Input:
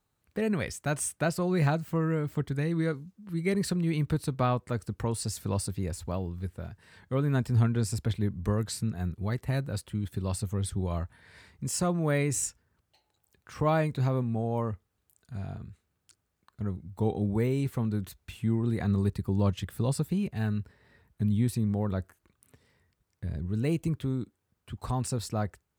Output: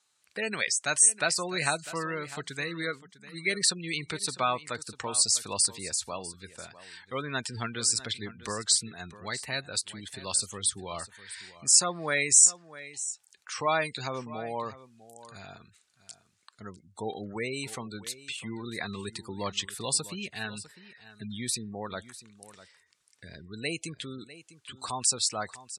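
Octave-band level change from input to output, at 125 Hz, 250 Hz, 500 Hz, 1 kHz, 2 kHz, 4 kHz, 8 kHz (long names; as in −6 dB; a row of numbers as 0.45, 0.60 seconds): −15.0, −10.0, −3.5, +2.0, +7.0, +13.0, +13.5 decibels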